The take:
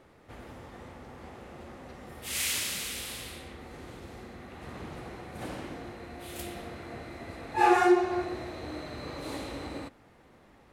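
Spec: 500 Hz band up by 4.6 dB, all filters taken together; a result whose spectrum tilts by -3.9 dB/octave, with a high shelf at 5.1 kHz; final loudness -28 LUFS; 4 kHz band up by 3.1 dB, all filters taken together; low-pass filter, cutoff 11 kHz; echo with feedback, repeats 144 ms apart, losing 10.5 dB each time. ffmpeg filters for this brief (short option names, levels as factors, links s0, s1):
-af "lowpass=11000,equalizer=f=500:t=o:g=8,equalizer=f=4000:t=o:g=5.5,highshelf=f=5100:g=-4,aecho=1:1:144|288|432:0.299|0.0896|0.0269,volume=1.06"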